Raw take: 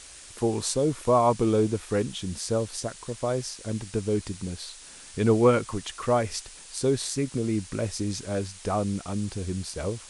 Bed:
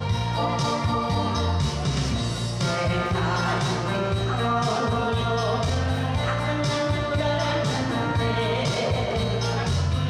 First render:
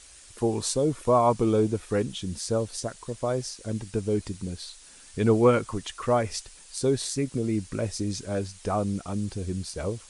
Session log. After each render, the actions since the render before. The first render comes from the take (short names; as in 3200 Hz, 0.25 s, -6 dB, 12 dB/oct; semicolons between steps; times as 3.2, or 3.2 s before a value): denoiser 6 dB, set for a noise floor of -46 dBFS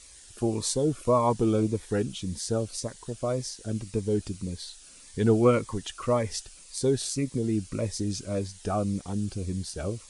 cascading phaser falling 1.8 Hz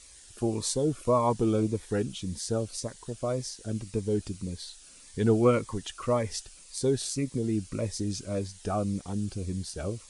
gain -1.5 dB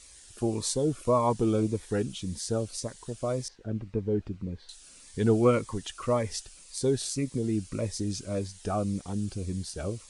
3.48–4.69 LPF 1900 Hz